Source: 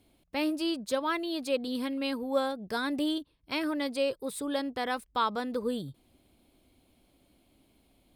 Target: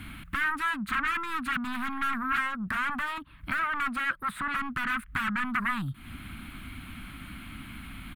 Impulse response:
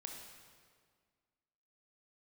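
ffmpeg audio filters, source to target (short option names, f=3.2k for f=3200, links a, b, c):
-filter_complex "[0:a]aeval=exprs='0.168*sin(PI/2*8.91*val(0)/0.168)':c=same,acrossover=split=2600|7300[a][b][c];[a]acompressor=threshold=-24dB:ratio=4[d];[b]acompressor=threshold=-38dB:ratio=4[e];[c]acompressor=threshold=-39dB:ratio=4[f];[d][e][f]amix=inputs=3:normalize=0,asettb=1/sr,asplit=3[g][h][i];[g]atrim=end=2.464[j];[h]atrim=start=2.46:end=4.57,asetpts=PTS-STARTPTS,afade=t=in:d=0.004:c=qsin,afade=t=out:st=2.106:d=0.004:c=qsin,equalizer=f=610:t=o:w=0.78:g=8.5[k];[i]atrim=start=4.566[l];[j][k]acrossfade=d=0.004:c1=hsin:c2=qsin[m];[m][l]acrossfade=d=0.004:c1=qsin:c2=hsin,acompressor=threshold=-36dB:ratio=3,firequalizer=gain_entry='entry(220,0);entry(450,-27);entry(1300,11);entry(5300,-18);entry(9200,-8)':delay=0.05:min_phase=1,volume=3dB"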